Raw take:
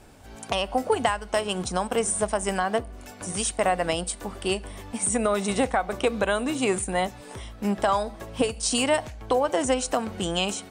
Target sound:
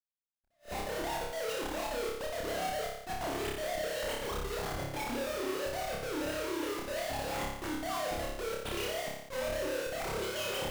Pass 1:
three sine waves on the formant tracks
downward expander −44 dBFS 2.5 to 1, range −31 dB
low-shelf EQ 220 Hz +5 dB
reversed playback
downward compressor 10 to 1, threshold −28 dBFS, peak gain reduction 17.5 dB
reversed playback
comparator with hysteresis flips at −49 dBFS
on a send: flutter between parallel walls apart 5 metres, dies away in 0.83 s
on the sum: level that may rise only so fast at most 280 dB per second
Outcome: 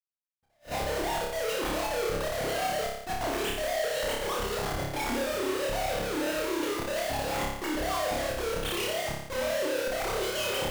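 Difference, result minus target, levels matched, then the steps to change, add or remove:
downward compressor: peak gain reduction −5.5 dB
change: downward compressor 10 to 1, threshold −34 dBFS, peak gain reduction 23 dB

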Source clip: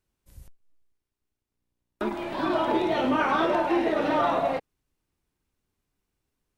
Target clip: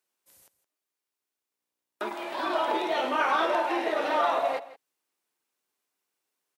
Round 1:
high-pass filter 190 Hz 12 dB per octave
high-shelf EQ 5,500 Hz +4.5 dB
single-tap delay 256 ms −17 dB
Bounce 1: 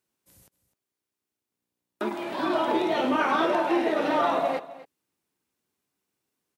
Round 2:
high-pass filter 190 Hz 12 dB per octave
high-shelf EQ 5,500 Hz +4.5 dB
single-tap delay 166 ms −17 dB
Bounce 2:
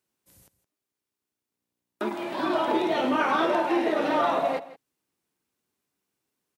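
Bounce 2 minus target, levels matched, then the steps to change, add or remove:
250 Hz band +6.5 dB
change: high-pass filter 510 Hz 12 dB per octave

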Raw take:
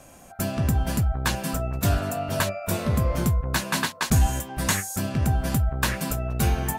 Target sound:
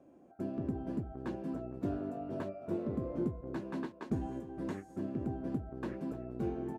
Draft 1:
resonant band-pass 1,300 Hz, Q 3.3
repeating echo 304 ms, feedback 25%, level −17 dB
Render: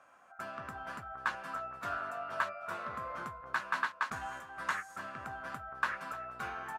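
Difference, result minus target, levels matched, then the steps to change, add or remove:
250 Hz band −18.5 dB
change: resonant band-pass 330 Hz, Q 3.3

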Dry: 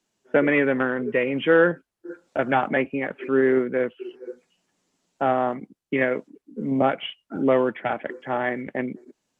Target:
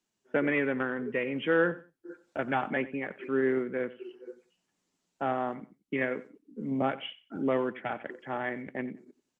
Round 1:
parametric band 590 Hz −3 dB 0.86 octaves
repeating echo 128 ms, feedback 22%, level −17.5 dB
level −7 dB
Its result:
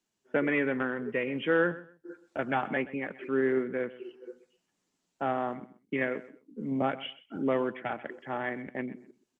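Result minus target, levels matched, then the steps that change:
echo 37 ms late
change: repeating echo 91 ms, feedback 22%, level −17.5 dB

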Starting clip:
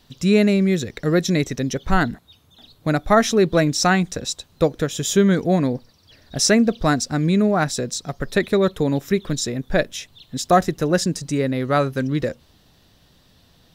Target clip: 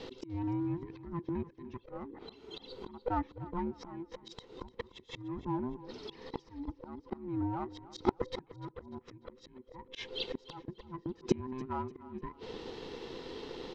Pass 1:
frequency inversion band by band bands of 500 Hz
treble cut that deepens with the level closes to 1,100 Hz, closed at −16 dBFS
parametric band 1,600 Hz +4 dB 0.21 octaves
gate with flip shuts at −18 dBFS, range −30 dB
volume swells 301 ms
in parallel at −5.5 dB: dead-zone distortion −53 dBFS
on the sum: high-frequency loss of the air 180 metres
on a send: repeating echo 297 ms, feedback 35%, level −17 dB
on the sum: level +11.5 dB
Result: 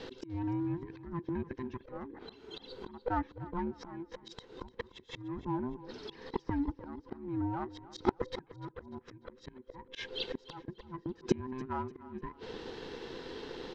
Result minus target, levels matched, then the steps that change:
2,000 Hz band +3.0 dB
change: parametric band 1,600 Hz −7 dB 0.21 octaves

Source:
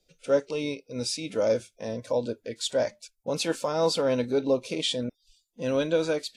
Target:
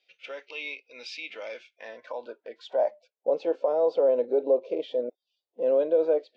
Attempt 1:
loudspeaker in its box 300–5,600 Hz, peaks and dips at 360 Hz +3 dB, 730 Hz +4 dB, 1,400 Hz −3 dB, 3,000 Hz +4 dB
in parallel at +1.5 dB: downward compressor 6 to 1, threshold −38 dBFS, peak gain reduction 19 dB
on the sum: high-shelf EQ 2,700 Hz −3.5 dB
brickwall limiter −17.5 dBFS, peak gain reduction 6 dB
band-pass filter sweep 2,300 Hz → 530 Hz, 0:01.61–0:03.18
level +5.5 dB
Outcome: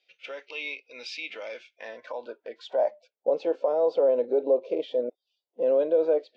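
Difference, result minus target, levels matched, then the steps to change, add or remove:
downward compressor: peak gain reduction −7.5 dB
change: downward compressor 6 to 1, threshold −47 dBFS, peak gain reduction 26.5 dB

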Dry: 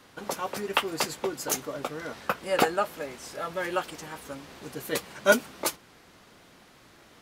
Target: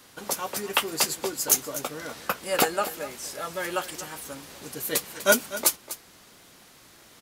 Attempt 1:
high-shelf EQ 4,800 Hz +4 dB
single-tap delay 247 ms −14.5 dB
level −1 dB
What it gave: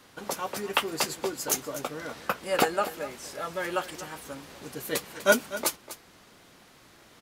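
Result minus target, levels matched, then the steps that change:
8,000 Hz band −3.5 dB
change: high-shelf EQ 4,800 Hz +13 dB

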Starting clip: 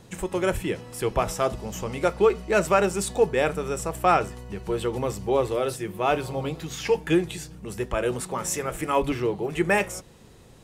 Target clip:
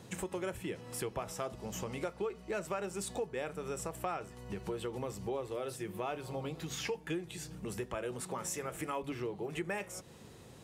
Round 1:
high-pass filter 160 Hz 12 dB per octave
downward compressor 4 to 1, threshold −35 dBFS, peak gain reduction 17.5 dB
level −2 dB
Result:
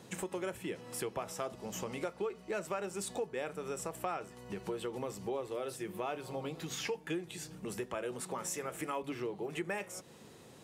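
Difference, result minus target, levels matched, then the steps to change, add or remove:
125 Hz band −3.5 dB
change: high-pass filter 79 Hz 12 dB per octave

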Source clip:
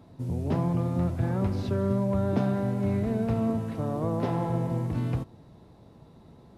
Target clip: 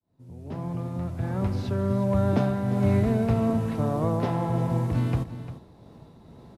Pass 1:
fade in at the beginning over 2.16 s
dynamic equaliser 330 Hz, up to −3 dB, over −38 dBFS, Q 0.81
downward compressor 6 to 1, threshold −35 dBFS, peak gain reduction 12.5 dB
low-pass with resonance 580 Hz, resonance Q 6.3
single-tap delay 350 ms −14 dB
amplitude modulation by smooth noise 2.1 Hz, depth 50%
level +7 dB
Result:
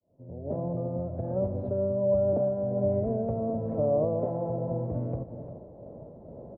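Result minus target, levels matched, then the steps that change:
downward compressor: peak gain reduction +12.5 dB; 500 Hz band +6.5 dB
remove: downward compressor 6 to 1, threshold −35 dBFS, peak gain reduction 12.5 dB
remove: low-pass with resonance 580 Hz, resonance Q 6.3

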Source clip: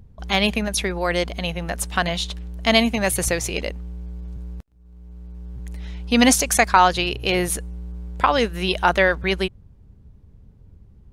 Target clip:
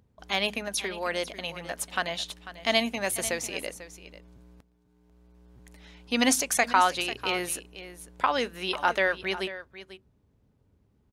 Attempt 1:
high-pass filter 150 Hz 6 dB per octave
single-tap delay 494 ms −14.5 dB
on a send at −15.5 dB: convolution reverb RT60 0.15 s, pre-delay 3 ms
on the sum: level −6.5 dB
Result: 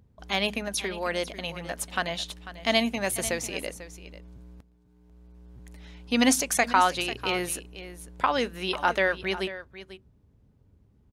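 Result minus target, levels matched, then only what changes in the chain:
125 Hz band +4.5 dB
change: high-pass filter 350 Hz 6 dB per octave

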